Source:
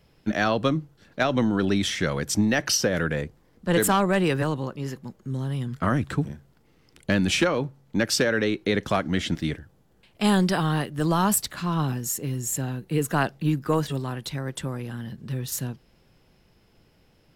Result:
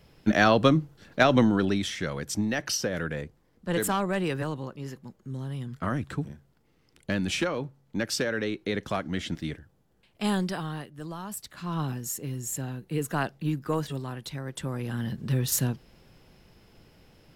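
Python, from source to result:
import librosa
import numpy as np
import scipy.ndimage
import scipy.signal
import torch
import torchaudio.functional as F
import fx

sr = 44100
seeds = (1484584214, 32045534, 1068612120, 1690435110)

y = fx.gain(x, sr, db=fx.line((1.36, 3.0), (1.89, -6.0), (10.32, -6.0), (11.26, -17.0), (11.75, -5.0), (14.49, -5.0), (15.04, 4.0)))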